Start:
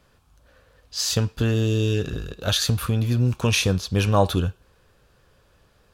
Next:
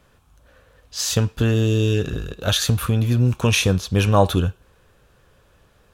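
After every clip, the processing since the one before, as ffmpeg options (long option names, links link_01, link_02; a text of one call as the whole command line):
ffmpeg -i in.wav -af "equalizer=frequency=4700:width_type=o:width=0.35:gain=-5.5,volume=3dB" out.wav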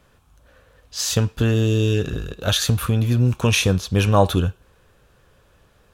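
ffmpeg -i in.wav -af anull out.wav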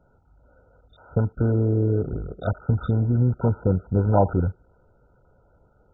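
ffmpeg -i in.wav -af "volume=-2.5dB" -ar 16000 -c:a mp2 -b:a 8k out.mp2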